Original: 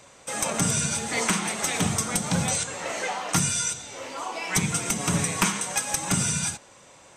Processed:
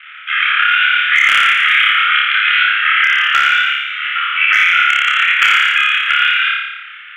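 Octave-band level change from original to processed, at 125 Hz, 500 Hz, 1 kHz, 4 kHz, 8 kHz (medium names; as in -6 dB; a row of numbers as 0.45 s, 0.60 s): under -25 dB, under -15 dB, +14.5 dB, +17.5 dB, under -10 dB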